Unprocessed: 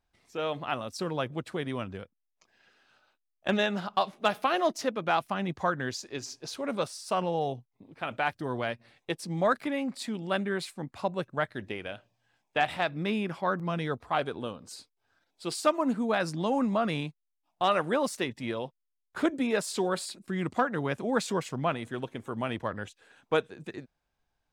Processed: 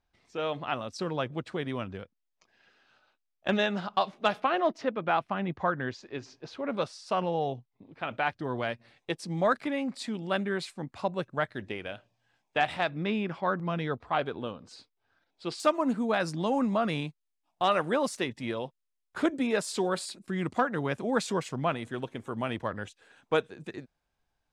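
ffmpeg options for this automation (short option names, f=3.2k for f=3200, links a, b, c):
-af "asetnsamples=n=441:p=0,asendcmd='4.4 lowpass f 2800;6.77 lowpass f 4900;8.58 lowpass f 8400;12.9 lowpass f 4400;15.6 lowpass f 11000',lowpass=6.3k"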